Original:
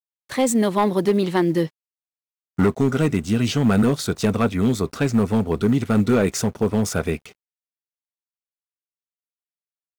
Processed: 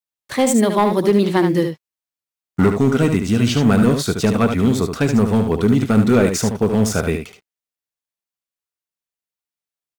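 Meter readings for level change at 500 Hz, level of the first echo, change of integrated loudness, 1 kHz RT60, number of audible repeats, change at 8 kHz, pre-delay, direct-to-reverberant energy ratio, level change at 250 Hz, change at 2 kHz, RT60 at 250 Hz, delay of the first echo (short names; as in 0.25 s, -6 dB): +4.0 dB, -7.0 dB, +4.0 dB, none, 1, +4.0 dB, none, none, +4.0 dB, +4.0 dB, none, 74 ms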